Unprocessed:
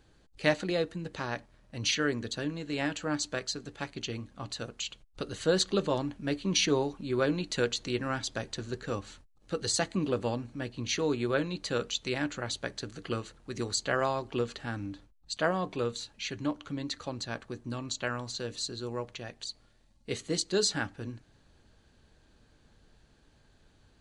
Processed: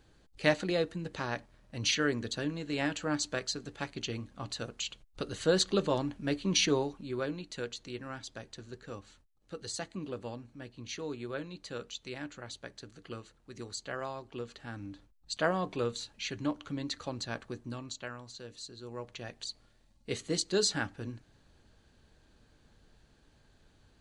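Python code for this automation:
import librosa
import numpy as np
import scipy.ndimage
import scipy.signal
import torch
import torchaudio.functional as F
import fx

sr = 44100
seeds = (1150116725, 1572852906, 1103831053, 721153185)

y = fx.gain(x, sr, db=fx.line((6.65, -0.5), (7.46, -9.5), (14.4, -9.5), (15.33, -1.0), (17.53, -1.0), (18.17, -10.0), (18.75, -10.0), (19.25, -1.0)))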